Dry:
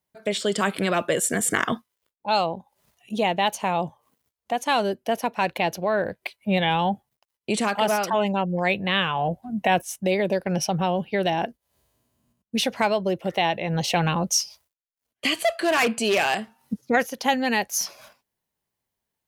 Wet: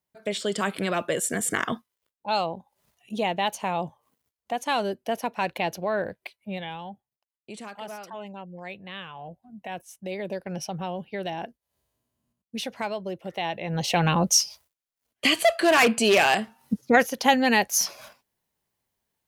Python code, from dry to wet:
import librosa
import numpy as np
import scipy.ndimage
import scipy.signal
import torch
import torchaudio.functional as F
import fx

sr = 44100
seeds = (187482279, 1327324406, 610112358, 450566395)

y = fx.gain(x, sr, db=fx.line((6.02, -3.5), (6.84, -16.0), (9.66, -16.0), (10.31, -8.5), (13.32, -8.5), (14.21, 2.5)))